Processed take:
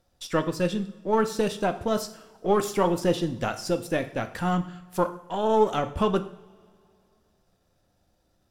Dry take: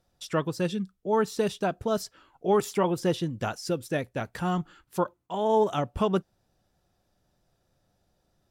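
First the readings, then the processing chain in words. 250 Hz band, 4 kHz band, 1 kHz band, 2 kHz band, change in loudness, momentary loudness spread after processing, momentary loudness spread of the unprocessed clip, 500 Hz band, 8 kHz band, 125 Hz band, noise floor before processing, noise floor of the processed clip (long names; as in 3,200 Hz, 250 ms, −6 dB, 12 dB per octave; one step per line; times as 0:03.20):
+2.0 dB, +2.5 dB, +2.5 dB, +3.0 dB, +2.0 dB, 7 LU, 8 LU, +1.5 dB, +2.5 dB, +1.0 dB, −74 dBFS, −69 dBFS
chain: gain on one half-wave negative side −3 dB
coupled-rooms reverb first 0.56 s, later 2.5 s, from −20 dB, DRR 8 dB
level +3 dB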